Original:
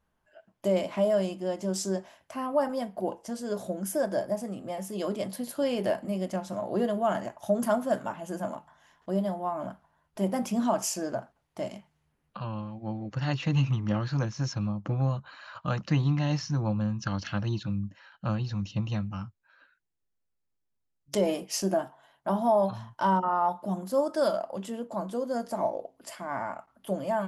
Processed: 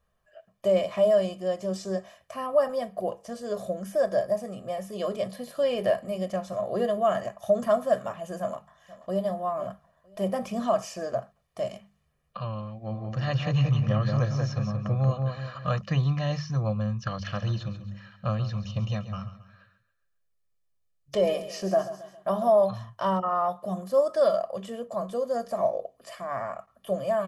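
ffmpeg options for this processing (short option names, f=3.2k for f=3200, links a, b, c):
-filter_complex "[0:a]asplit=2[a][b];[b]afade=t=in:st=8.4:d=0.01,afade=t=out:st=9.22:d=0.01,aecho=0:1:480|960|1440:0.133352|0.0400056|0.0120017[c];[a][c]amix=inputs=2:normalize=0,asplit=3[d][e][f];[d]afade=t=out:st=12.91:d=0.02[g];[e]asplit=2[h][i];[i]adelay=180,lowpass=f=2k:p=1,volume=-3.5dB,asplit=2[j][k];[k]adelay=180,lowpass=f=2k:p=1,volume=0.41,asplit=2[l][m];[m]adelay=180,lowpass=f=2k:p=1,volume=0.41,asplit=2[n][o];[o]adelay=180,lowpass=f=2k:p=1,volume=0.41,asplit=2[p][q];[q]adelay=180,lowpass=f=2k:p=1,volume=0.41[r];[h][j][l][n][p][r]amix=inputs=6:normalize=0,afade=t=in:st=12.91:d=0.02,afade=t=out:st=15.77:d=0.02[s];[f]afade=t=in:st=15.77:d=0.02[t];[g][s][t]amix=inputs=3:normalize=0,asplit=3[u][v][w];[u]afade=t=out:st=17.26:d=0.02[x];[v]aecho=1:1:136|272|408|544:0.211|0.0909|0.0391|0.0168,afade=t=in:st=17.26:d=0.02,afade=t=out:st=22.52:d=0.02[y];[w]afade=t=in:st=22.52:d=0.02[z];[x][y][z]amix=inputs=3:normalize=0,acrossover=split=4200[aa][ab];[ab]acompressor=threshold=-51dB:ratio=4:attack=1:release=60[ac];[aa][ac]amix=inputs=2:normalize=0,bandreject=f=50:t=h:w=6,bandreject=f=100:t=h:w=6,bandreject=f=150:t=h:w=6,bandreject=f=200:t=h:w=6,aecho=1:1:1.7:0.71"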